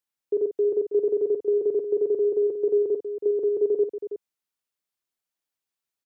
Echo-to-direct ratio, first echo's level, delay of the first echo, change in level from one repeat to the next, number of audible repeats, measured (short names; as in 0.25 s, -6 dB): -6.0 dB, -8.5 dB, 52 ms, no steady repeat, 2